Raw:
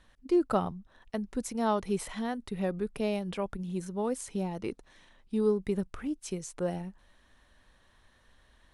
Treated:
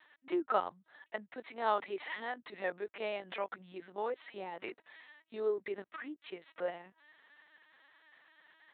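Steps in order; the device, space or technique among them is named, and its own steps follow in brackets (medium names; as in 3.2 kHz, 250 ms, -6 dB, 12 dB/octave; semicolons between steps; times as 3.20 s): talking toy (LPC vocoder at 8 kHz pitch kept; high-pass 560 Hz 12 dB/octave; peaking EQ 1.9 kHz +6.5 dB 0.59 oct)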